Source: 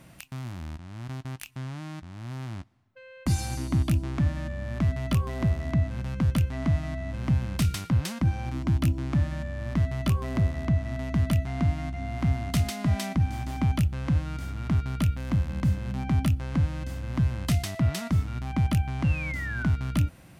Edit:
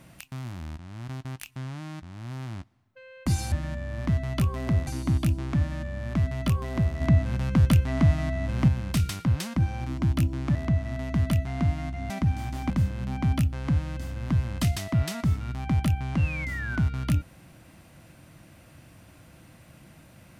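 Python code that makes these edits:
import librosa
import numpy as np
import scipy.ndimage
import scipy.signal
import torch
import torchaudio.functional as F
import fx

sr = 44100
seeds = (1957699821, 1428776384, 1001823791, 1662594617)

y = fx.edit(x, sr, fx.clip_gain(start_s=5.66, length_s=1.67, db=4.5),
    fx.move(start_s=9.2, length_s=1.35, to_s=3.52),
    fx.cut(start_s=12.1, length_s=0.94),
    fx.cut(start_s=13.64, length_s=1.93), tone=tone)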